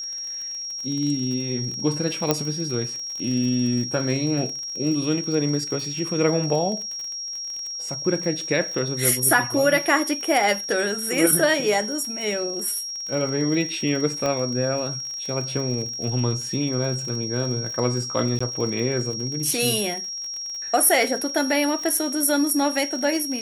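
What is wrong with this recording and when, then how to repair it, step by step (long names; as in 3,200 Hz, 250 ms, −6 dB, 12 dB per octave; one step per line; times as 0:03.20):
surface crackle 44 per second −30 dBFS
whistle 5,600 Hz −29 dBFS
0:02.31: click −4 dBFS
0:14.26: click −12 dBFS
0:18.39–0:18.41: drop-out 15 ms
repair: click removal
notch filter 5,600 Hz, Q 30
repair the gap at 0:18.39, 15 ms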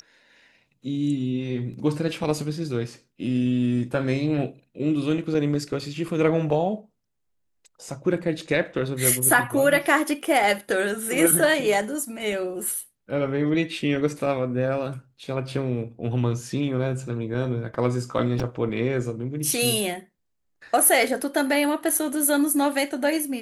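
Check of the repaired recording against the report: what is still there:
none of them is left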